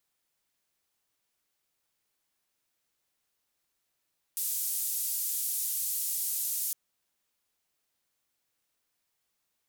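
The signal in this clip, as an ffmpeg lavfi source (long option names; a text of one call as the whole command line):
ffmpeg -f lavfi -i "anoisesrc=color=white:duration=2.36:sample_rate=44100:seed=1,highpass=frequency=7800,lowpass=frequency=16000,volume=-22.7dB" out.wav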